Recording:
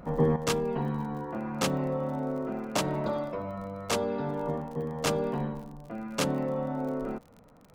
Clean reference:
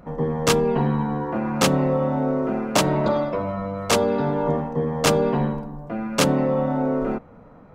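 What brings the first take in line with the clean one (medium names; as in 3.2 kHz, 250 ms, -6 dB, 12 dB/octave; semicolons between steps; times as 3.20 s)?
de-click; gain correction +9.5 dB, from 0.36 s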